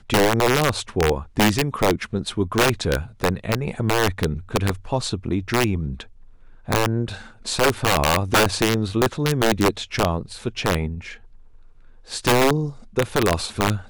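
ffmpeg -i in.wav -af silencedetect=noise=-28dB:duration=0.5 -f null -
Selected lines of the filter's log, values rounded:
silence_start: 6.02
silence_end: 6.69 | silence_duration: 0.67
silence_start: 11.12
silence_end: 12.11 | silence_duration: 0.99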